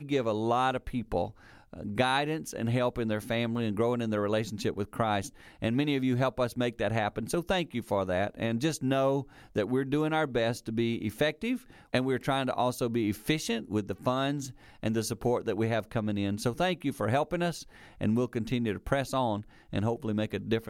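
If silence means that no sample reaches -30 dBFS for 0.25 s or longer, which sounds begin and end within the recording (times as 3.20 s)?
1.81–5.26 s
5.62–9.21 s
9.56–11.56 s
11.94–14.45 s
14.83–17.56 s
18.01–19.39 s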